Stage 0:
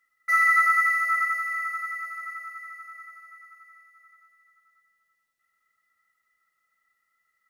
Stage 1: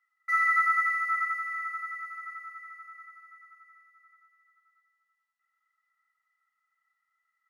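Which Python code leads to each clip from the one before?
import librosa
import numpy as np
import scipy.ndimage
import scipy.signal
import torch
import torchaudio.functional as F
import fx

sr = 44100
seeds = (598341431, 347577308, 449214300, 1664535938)

y = scipy.signal.sosfilt(scipy.signal.butter(8, 790.0, 'highpass', fs=sr, output='sos'), x)
y = fx.tilt_eq(y, sr, slope=-3.5)
y = y * 10.0 ** (-2.0 / 20.0)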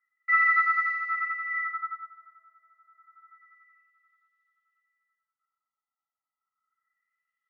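y = fx.filter_lfo_lowpass(x, sr, shape='sine', hz=0.29, low_hz=820.0, high_hz=3600.0, q=3.1)
y = fx.upward_expand(y, sr, threshold_db=-39.0, expansion=1.5)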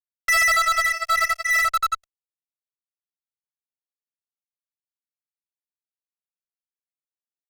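y = fx.dereverb_blind(x, sr, rt60_s=1.4)
y = fx.fuzz(y, sr, gain_db=38.0, gate_db=-43.0)
y = y * 10.0 ** (-3.5 / 20.0)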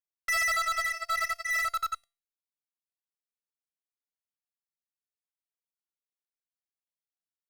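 y = fx.comb_fb(x, sr, f0_hz=170.0, decay_s=0.34, harmonics='all', damping=0.0, mix_pct=40)
y = y * 10.0 ** (-5.0 / 20.0)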